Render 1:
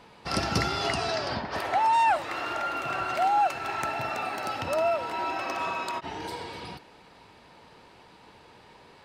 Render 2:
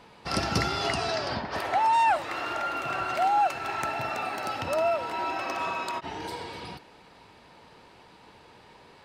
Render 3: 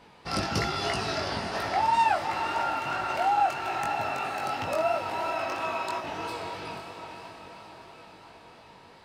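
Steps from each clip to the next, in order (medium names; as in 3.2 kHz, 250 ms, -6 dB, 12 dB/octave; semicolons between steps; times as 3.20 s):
no audible change
echo that smears into a reverb 512 ms, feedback 59%, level -7.5 dB; chorus 3 Hz, delay 18.5 ms, depth 3.8 ms; trim +1.5 dB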